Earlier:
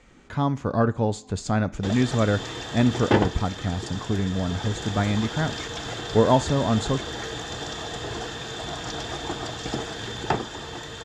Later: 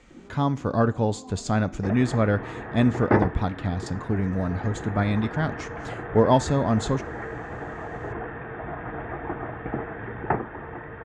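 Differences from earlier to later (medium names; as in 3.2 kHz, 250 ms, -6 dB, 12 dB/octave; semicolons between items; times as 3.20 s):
first sound +10.5 dB; second sound: add steep low-pass 2.2 kHz 48 dB/octave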